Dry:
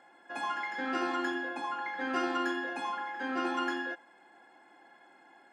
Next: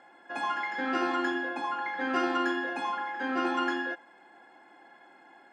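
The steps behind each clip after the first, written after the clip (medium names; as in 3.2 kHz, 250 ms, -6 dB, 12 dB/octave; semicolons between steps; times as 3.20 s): treble shelf 8.3 kHz -10 dB; trim +3.5 dB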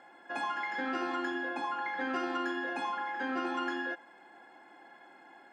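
compression 3:1, threshold -32 dBFS, peak gain reduction 7 dB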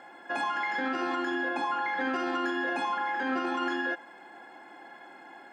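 peak limiter -28.5 dBFS, peak gain reduction 6.5 dB; trim +6.5 dB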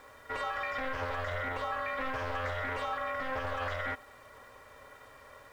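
ring modulator 260 Hz; bit crusher 10-bit; loudspeaker Doppler distortion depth 0.25 ms; trim -1.5 dB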